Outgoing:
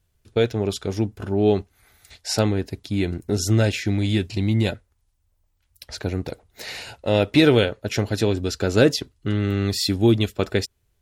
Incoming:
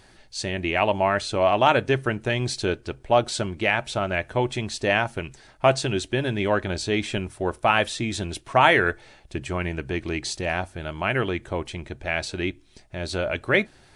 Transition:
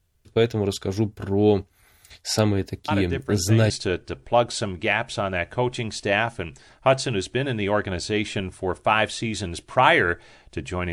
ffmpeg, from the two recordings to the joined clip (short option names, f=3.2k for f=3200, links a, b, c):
-filter_complex "[1:a]asplit=2[a][b];[0:a]apad=whole_dur=10.92,atrim=end=10.92,atrim=end=3.702[c];[b]atrim=start=2.478:end=9.7[d];[a]atrim=start=1.66:end=2.48,asetpts=PTS-STARTPTS,volume=-8dB,afade=t=in:d=0.004:c=hsin,afade=t=out:st=0.816:d=0.004:c=hsin,adelay=2880[e];[c][d]acrossfade=d=0.004:c1=hsin:c2=hsin[f];[f][e]amix=inputs=2:normalize=0"